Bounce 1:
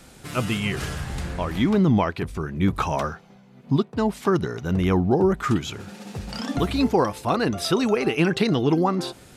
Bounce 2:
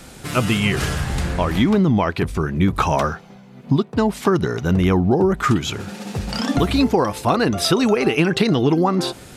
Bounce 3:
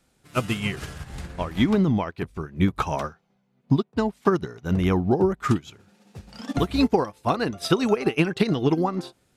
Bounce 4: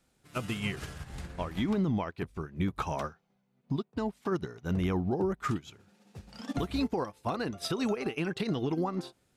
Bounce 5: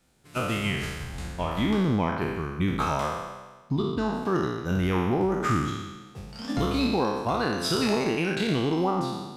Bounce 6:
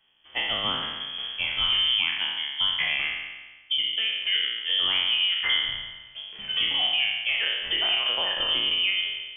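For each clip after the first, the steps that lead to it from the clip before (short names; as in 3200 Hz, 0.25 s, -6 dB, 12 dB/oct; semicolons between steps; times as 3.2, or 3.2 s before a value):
compressor, threshold -20 dBFS, peak gain reduction 6 dB; gain +7.5 dB
upward expander 2.5:1, over -29 dBFS; gain -1 dB
limiter -16 dBFS, peak gain reduction 10 dB; gain -5.5 dB
spectral trails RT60 1.29 s; gain +3 dB
inverted band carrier 3300 Hz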